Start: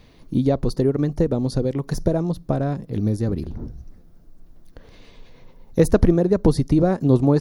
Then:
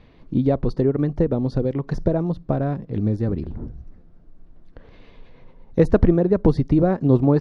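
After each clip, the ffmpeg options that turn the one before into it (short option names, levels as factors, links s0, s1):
-af "lowpass=2800"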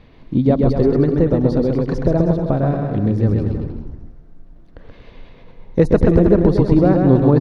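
-filter_complex "[0:a]asplit=2[s0][s1];[s1]aecho=0:1:130|234|317.2|383.8|437:0.631|0.398|0.251|0.158|0.1[s2];[s0][s2]amix=inputs=2:normalize=0,alimiter=level_in=1.68:limit=0.891:release=50:level=0:latency=1,volume=0.891"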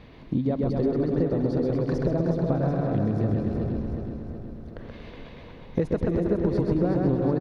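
-filter_complex "[0:a]highpass=f=52:p=1,acompressor=threshold=0.0562:ratio=4,asplit=2[s0][s1];[s1]aecho=0:1:369|738|1107|1476|1845|2214|2583:0.473|0.265|0.148|0.0831|0.0465|0.0261|0.0146[s2];[s0][s2]amix=inputs=2:normalize=0,volume=1.12"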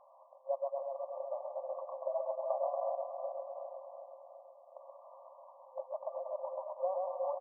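-af "afftfilt=real='re*between(b*sr/4096,520,1200)':imag='im*between(b*sr/4096,520,1200)':win_size=4096:overlap=0.75,volume=0.75"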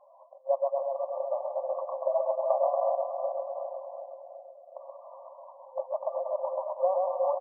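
-af "afftdn=nr=18:nf=-52,acontrast=67,volume=1.26"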